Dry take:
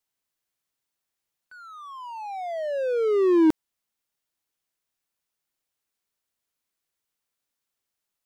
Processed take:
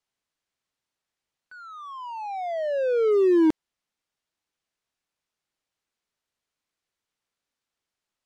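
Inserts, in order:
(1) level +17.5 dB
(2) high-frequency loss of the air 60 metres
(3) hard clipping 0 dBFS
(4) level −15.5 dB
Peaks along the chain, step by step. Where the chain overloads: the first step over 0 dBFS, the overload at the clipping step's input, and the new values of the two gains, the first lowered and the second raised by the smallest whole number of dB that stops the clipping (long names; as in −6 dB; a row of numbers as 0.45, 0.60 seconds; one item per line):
+6.5, +6.5, 0.0, −15.5 dBFS
step 1, 6.5 dB
step 1 +10.5 dB, step 4 −8.5 dB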